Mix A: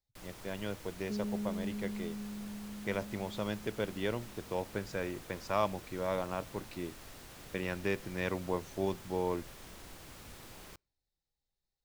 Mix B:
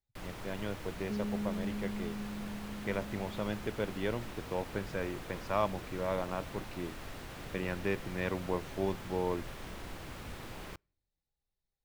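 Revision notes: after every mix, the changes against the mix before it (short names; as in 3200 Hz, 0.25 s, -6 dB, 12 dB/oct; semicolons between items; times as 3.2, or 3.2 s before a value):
first sound +7.0 dB; master: add tone controls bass +1 dB, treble -9 dB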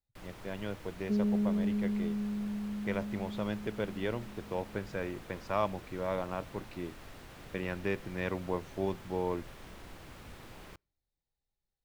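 first sound -5.0 dB; second sound +7.0 dB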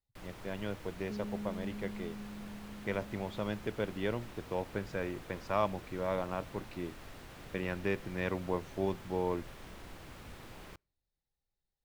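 second sound -11.5 dB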